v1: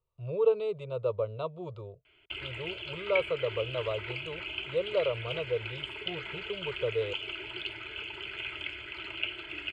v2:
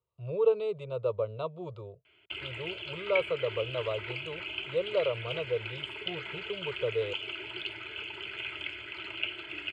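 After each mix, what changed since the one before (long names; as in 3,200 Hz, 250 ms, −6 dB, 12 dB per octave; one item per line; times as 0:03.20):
master: add high-pass filter 84 Hz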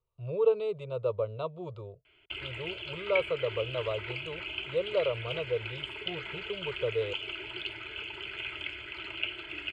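master: remove high-pass filter 84 Hz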